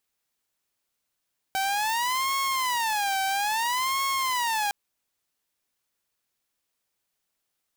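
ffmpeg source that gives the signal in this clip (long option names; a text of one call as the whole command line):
ffmpeg -f lavfi -i "aevalsrc='0.0841*(2*mod((931*t-159/(2*PI*0.6)*sin(2*PI*0.6*t)),1)-1)':duration=3.16:sample_rate=44100" out.wav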